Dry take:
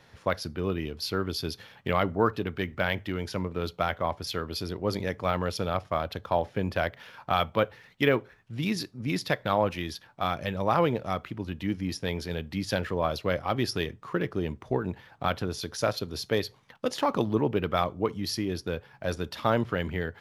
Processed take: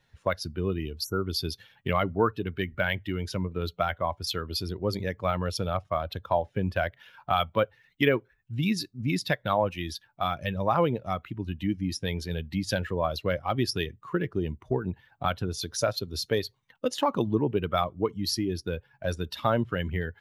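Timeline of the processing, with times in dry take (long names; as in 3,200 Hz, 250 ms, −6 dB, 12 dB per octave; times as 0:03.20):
0:01.04–0:01.26: time-frequency box erased 1,500–5,500 Hz
whole clip: spectral dynamics exaggerated over time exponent 1.5; downward compressor 1.5 to 1, threshold −39 dBFS; level +8.5 dB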